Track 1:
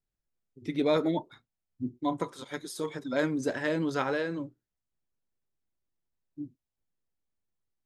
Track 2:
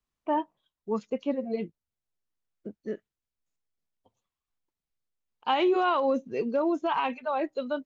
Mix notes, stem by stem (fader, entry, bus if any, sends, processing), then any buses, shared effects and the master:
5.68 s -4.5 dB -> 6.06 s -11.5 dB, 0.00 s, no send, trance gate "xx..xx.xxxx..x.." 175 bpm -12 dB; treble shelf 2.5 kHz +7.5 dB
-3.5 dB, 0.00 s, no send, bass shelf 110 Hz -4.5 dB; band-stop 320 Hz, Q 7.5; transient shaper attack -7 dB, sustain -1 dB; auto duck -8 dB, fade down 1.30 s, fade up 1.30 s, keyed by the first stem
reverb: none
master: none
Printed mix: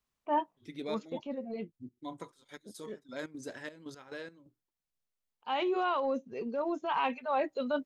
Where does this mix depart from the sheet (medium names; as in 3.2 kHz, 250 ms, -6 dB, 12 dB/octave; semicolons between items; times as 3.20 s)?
stem 1 -4.5 dB -> -13.0 dB; stem 2 -3.5 dB -> +3.0 dB